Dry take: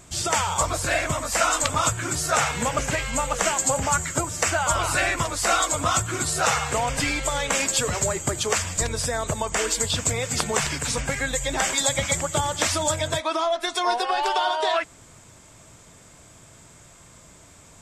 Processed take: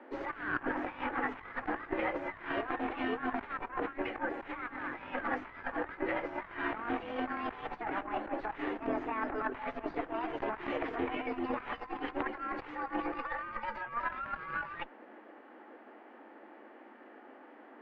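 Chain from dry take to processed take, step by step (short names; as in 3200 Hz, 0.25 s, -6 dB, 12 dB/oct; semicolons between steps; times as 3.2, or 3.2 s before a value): frequency shift +210 Hz; formant shift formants +4 st; added harmonics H 4 -6 dB, 5 -34 dB, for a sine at -3 dBFS; negative-ratio compressor -27 dBFS, ratio -0.5; LPF 2000 Hz 24 dB/oct; gain -7 dB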